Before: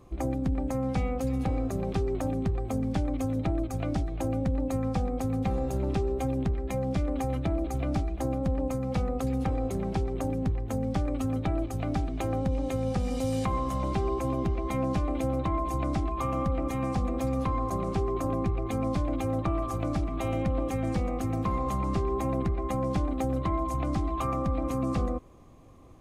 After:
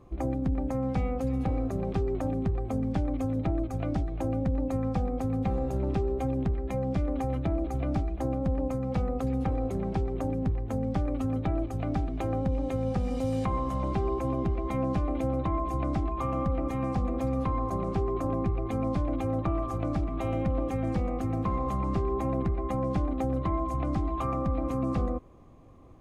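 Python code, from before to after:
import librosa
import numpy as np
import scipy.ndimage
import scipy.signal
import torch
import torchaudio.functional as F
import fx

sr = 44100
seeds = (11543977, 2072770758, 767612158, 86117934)

y = fx.high_shelf(x, sr, hz=3200.0, db=-10.0)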